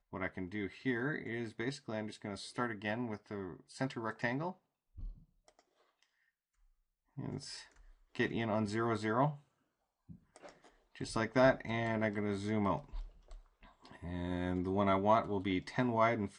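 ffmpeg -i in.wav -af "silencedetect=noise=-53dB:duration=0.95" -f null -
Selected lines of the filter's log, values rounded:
silence_start: 6.03
silence_end: 7.17 | silence_duration: 1.14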